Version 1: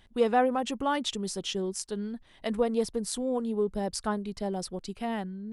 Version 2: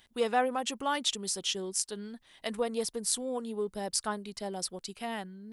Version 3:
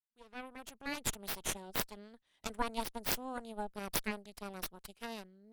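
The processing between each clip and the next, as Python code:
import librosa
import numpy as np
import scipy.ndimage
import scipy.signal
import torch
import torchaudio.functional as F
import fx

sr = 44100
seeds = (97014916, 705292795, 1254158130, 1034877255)

y1 = fx.tilt_eq(x, sr, slope=2.5)
y1 = y1 * librosa.db_to_amplitude(-2.0)
y2 = fx.fade_in_head(y1, sr, length_s=1.34)
y2 = fx.cheby_harmonics(y2, sr, harmonics=(3, 6), levels_db=(-8, -9), full_scale_db=-9.5)
y2 = y2 * librosa.db_to_amplitude(-2.0)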